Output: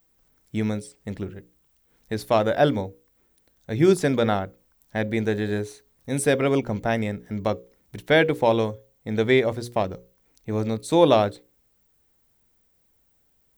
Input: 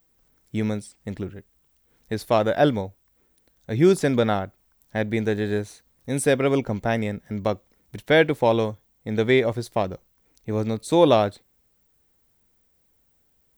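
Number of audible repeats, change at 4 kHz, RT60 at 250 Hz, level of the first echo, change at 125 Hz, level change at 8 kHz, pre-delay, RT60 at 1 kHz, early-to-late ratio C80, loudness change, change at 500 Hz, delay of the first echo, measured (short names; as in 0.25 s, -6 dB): none, 0.0 dB, none, none, -0.5 dB, 0.0 dB, none, none, none, -0.5 dB, -0.5 dB, none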